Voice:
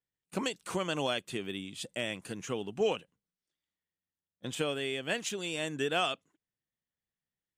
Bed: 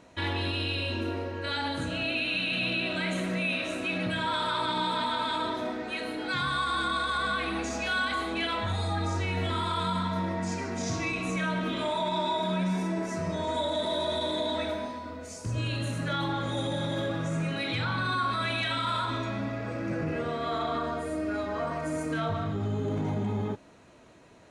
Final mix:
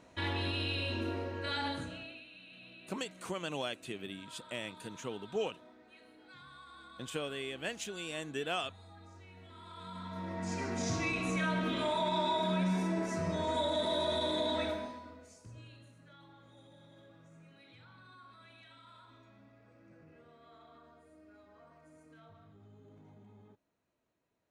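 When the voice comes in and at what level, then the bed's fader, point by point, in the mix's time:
2.55 s, -5.5 dB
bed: 1.70 s -4.5 dB
2.29 s -25 dB
9.48 s -25 dB
10.63 s -3 dB
14.66 s -3 dB
15.95 s -28 dB

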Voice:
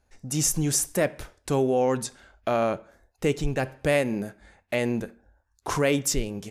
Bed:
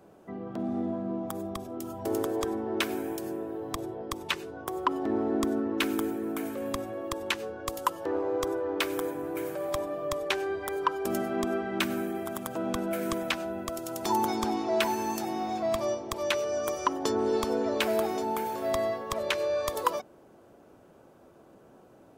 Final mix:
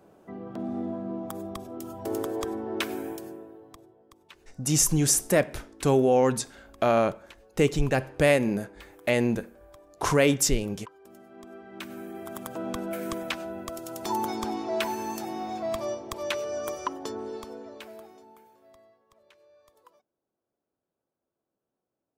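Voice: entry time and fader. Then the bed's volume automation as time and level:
4.35 s, +2.0 dB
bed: 3.08 s -1 dB
3.99 s -21.5 dB
11.17 s -21.5 dB
12.40 s -2 dB
16.71 s -2 dB
18.94 s -31 dB

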